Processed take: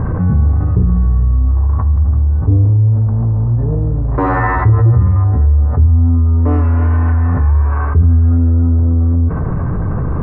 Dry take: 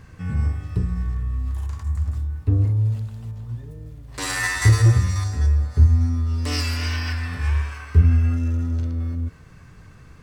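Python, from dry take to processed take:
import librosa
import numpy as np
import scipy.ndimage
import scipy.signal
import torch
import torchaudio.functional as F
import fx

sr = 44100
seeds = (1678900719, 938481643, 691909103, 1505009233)

y = fx.law_mismatch(x, sr, coded='mu')
y = scipy.signal.sosfilt(scipy.signal.butter(4, 1100.0, 'lowpass', fs=sr, output='sos'), y)
y = fx.env_flatten(y, sr, amount_pct=70)
y = y * 10.0 ** (2.0 / 20.0)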